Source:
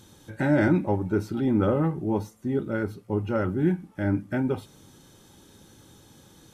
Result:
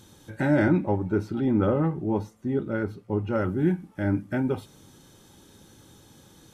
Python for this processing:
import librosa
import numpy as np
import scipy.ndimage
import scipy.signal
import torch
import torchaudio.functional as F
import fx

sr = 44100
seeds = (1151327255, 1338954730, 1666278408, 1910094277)

y = fx.high_shelf(x, sr, hz=6100.0, db=-10.0, at=(0.62, 3.33))